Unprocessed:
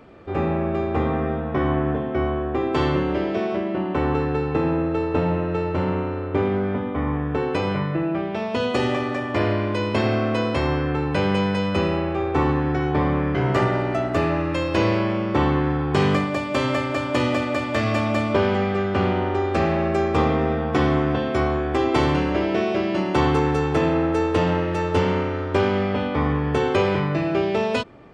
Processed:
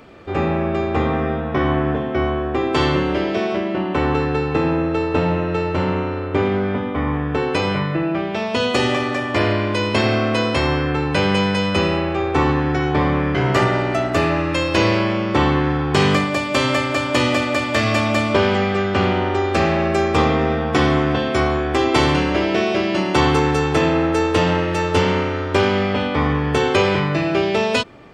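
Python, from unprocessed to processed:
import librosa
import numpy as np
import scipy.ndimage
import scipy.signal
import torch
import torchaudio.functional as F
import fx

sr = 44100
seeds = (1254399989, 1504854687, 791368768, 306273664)

y = fx.high_shelf(x, sr, hz=2100.0, db=8.5)
y = y * librosa.db_to_amplitude(2.5)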